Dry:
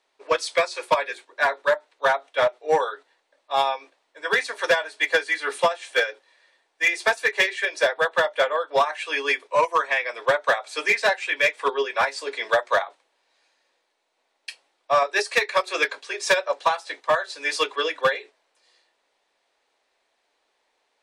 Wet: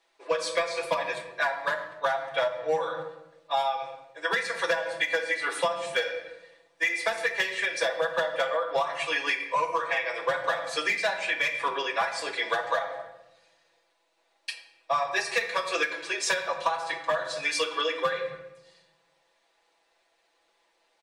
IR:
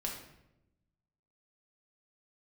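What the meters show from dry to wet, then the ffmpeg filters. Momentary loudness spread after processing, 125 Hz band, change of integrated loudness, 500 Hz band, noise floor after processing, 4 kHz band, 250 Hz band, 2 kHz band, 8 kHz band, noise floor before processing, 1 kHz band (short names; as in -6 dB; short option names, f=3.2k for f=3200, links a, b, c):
7 LU, -2.5 dB, -5.0 dB, -5.5 dB, -70 dBFS, -3.5 dB, -3.0 dB, -5.0 dB, -2.0 dB, -73 dBFS, -5.0 dB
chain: -filter_complex "[0:a]aecho=1:1:6:0.87,asplit=2[a][b];[1:a]atrim=start_sample=2205[c];[b][c]afir=irnorm=-1:irlink=0,volume=-1dB[d];[a][d]amix=inputs=2:normalize=0,acompressor=threshold=-18dB:ratio=5,volume=-6dB"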